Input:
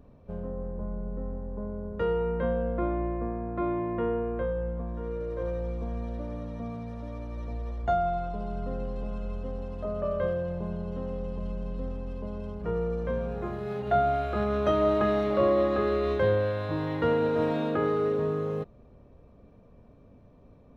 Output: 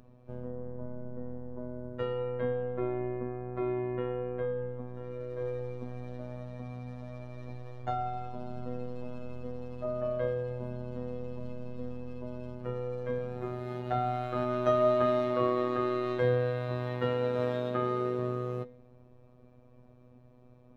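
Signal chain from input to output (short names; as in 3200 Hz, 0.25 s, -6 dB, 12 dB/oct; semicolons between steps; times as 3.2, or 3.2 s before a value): de-hum 231.9 Hz, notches 27; robotiser 124 Hz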